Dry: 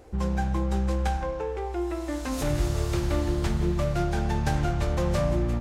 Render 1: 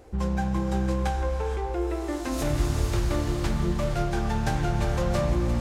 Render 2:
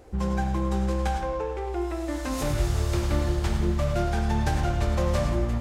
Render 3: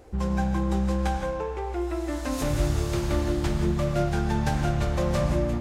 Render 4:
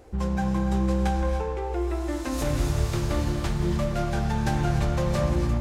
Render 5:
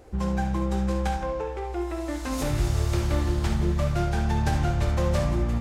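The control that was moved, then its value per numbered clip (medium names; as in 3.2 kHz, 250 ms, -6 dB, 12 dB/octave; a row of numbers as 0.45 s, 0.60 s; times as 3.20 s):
gated-style reverb, gate: 500 ms, 130 ms, 200 ms, 320 ms, 90 ms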